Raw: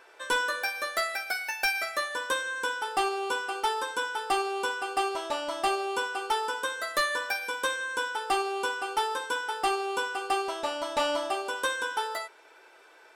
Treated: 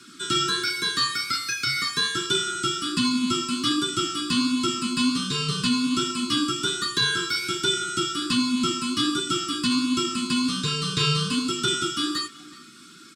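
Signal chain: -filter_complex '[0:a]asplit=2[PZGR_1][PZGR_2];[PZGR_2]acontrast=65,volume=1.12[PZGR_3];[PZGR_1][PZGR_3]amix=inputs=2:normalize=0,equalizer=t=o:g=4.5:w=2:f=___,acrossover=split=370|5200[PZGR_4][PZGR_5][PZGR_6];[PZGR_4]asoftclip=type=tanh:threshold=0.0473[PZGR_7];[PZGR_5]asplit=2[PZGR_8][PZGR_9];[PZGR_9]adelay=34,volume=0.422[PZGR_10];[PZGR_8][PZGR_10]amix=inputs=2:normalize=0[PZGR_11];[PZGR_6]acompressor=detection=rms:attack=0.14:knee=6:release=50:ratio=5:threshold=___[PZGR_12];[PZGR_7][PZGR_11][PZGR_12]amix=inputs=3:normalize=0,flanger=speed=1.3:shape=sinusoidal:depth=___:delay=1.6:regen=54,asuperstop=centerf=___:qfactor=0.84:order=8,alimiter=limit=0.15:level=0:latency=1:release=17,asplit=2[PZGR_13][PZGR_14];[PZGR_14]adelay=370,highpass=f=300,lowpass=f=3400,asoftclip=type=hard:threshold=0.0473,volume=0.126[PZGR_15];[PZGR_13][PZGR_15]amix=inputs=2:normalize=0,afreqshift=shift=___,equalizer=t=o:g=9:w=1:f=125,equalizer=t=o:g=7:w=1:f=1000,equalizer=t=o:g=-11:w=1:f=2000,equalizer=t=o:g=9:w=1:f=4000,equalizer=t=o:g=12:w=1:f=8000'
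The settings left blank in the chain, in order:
490, 0.00794, 9.4, 830, -140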